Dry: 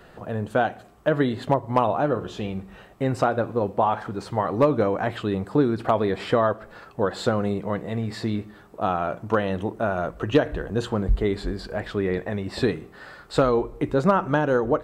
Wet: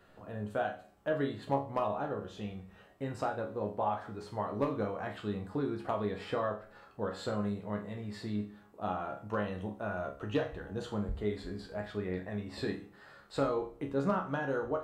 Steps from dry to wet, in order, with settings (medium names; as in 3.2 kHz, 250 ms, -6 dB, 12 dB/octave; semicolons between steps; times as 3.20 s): chord resonator C#2 sus4, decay 0.35 s